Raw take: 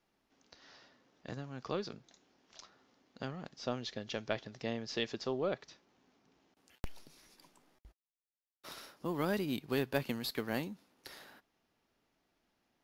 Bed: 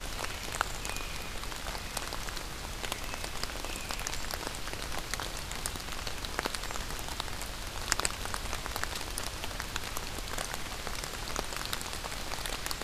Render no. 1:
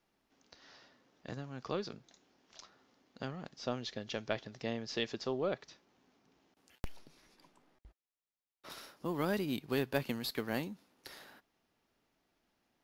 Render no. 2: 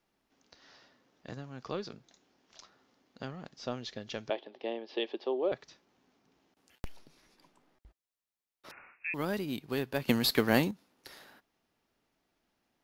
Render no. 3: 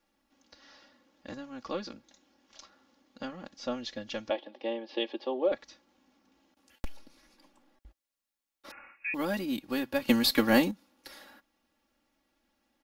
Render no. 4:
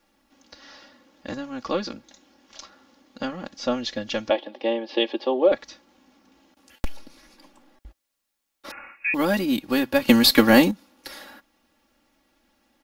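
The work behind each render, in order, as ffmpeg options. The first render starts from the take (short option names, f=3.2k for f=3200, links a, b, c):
-filter_complex "[0:a]asettb=1/sr,asplit=3[a][b][c];[a]atrim=end=6.964[d];[b]atrim=start=6.96:end=8.7,asetpts=PTS-STARTPTS,afade=t=in:d=0.004:c=qsin,afade=t=out:st=1.736:d=0.004:c=qsin,highshelf=f=5.6k:g=-11[e];[c]atrim=start=8.696[f];[d][e]acrossfade=d=0.004:c1=hsin:c2=qsin[g];[g][f]acrossfade=d=0.004:c1=qsin:c2=hsin"
-filter_complex "[0:a]asettb=1/sr,asplit=3[a][b][c];[a]atrim=end=4.304[d];[b]atrim=start=4.3:end=5.52,asetpts=PTS-STARTPTS,afade=t=in:d=0.004:c=qsin,afade=t=out:st=1.216:d=0.004:c=qsin,highpass=f=280:w=0.5412,highpass=f=280:w=1.3066,equalizer=f=360:t=q:w=4:g=7,equalizer=f=560:t=q:w=4:g=4,equalizer=f=840:t=q:w=4:g=6,equalizer=f=1.4k:t=q:w=4:g=-9,equalizer=f=2k:t=q:w=4:g=-4,equalizer=f=3.2k:t=q:w=4:g=4,lowpass=f=3.5k:w=0.5412,lowpass=f=3.5k:w=1.3066[e];[c]atrim=start=5.516[f];[d][e]acrossfade=d=0.004:c1=hsin:c2=qsin[g];[g][f]acrossfade=d=0.004:c1=qsin:c2=hsin,asettb=1/sr,asplit=3[h][i][j];[h]atrim=end=8.714[k];[i]atrim=start=8.71:end=9.14,asetpts=PTS-STARTPTS,afade=t=in:d=0.004:c=qsin,afade=t=out:st=0.426:d=0.004:c=qsin,lowpass=f=2.4k:t=q:w=0.5098,lowpass=f=2.4k:t=q:w=0.6013,lowpass=f=2.4k:t=q:w=0.9,lowpass=f=2.4k:t=q:w=2.563,afreqshift=-2800[l];[j]atrim=start=9.136[m];[k][l]acrossfade=d=0.004:c1=hsin:c2=qsin[n];[n][m]acrossfade=d=0.004:c1=qsin:c2=hsin,asplit=3[o][p][q];[o]atrim=end=10.082[r];[p]atrim=start=10.078:end=10.712,asetpts=PTS-STARTPTS,volume=10.5dB[s];[q]atrim=start=10.708[t];[r][s]acrossfade=d=0.004:c1=hsin:c2=hsin[u];[u][t]acrossfade=d=0.004:c1=hsin:c2=hsin"
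-af "aecho=1:1:3.6:0.88"
-af "volume=9.5dB,alimiter=limit=-1dB:level=0:latency=1"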